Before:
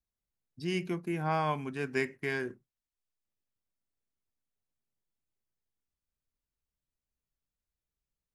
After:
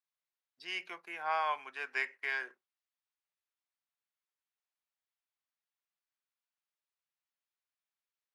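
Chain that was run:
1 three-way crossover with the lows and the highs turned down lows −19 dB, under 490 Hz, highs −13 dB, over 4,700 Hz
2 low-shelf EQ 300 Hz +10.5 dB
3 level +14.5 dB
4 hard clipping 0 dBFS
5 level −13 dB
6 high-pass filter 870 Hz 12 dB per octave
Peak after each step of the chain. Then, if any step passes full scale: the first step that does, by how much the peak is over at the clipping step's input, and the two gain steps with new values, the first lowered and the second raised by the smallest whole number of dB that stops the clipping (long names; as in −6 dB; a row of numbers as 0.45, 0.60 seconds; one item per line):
−20.5, −19.5, −5.0, −5.0, −18.0, −20.5 dBFS
no step passes full scale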